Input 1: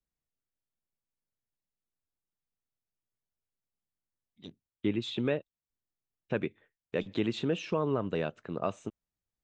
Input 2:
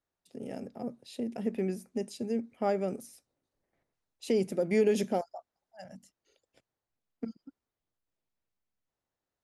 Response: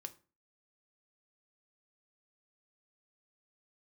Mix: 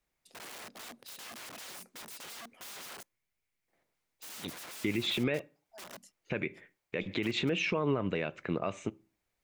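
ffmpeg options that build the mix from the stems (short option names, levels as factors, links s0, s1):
-filter_complex "[0:a]equalizer=f=2200:t=o:w=0.49:g=13,volume=1.33,asplit=2[s0][s1];[s1]volume=0.531[s2];[1:a]acompressor=threshold=0.0355:ratio=12,aeval=exprs='(mod(168*val(0)+1,2)-1)/168':c=same,highpass=f=340:p=1,volume=1.41,asplit=3[s3][s4][s5];[s3]atrim=end=3.03,asetpts=PTS-STARTPTS,afade=t=out:st=3.026:d=0.004:c=hsin[s6];[s4]atrim=start=3.03:end=3.68,asetpts=PTS-STARTPTS,volume=0[s7];[s5]atrim=start=3.68,asetpts=PTS-STARTPTS,afade=t=in:d=0.004:c=hsin[s8];[s6][s7][s8]concat=n=3:v=0:a=1,asplit=2[s9][s10];[s10]volume=0.126[s11];[2:a]atrim=start_sample=2205[s12];[s2][s11]amix=inputs=2:normalize=0[s13];[s13][s12]afir=irnorm=-1:irlink=0[s14];[s0][s9][s14]amix=inputs=3:normalize=0,alimiter=limit=0.0944:level=0:latency=1:release=92"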